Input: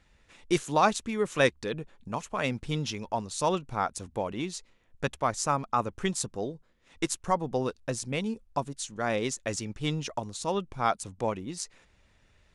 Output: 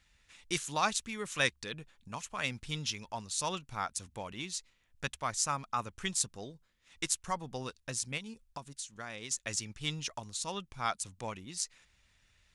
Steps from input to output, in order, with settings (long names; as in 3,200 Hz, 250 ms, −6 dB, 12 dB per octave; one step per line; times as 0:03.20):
guitar amp tone stack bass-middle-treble 5-5-5
0:08.17–0:09.31: downward compressor 6 to 1, threshold −47 dBFS, peak gain reduction 8.5 dB
level +7.5 dB